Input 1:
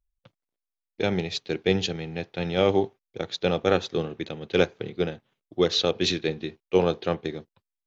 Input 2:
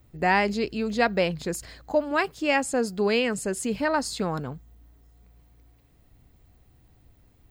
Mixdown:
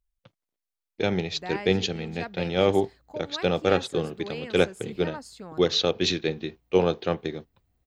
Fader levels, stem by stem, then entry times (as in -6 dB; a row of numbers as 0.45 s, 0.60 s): 0.0 dB, -14.0 dB; 0.00 s, 1.20 s